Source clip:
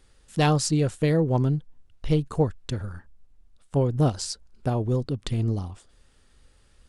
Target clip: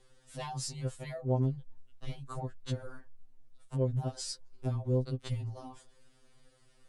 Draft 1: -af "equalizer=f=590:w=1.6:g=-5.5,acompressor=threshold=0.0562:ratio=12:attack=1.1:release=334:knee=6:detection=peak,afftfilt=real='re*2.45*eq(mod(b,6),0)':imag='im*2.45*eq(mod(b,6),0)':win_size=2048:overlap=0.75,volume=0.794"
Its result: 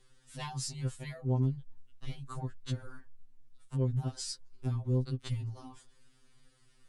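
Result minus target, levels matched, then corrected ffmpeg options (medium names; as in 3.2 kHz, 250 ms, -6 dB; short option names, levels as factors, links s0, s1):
500 Hz band -5.0 dB
-af "equalizer=f=590:w=1.6:g=5,acompressor=threshold=0.0562:ratio=12:attack=1.1:release=334:knee=6:detection=peak,afftfilt=real='re*2.45*eq(mod(b,6),0)':imag='im*2.45*eq(mod(b,6),0)':win_size=2048:overlap=0.75,volume=0.794"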